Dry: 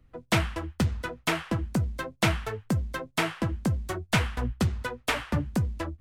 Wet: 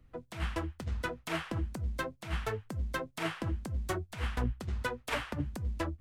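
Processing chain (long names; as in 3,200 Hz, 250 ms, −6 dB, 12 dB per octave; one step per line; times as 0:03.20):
compressor whose output falls as the input rises −28 dBFS, ratio −0.5
level −4 dB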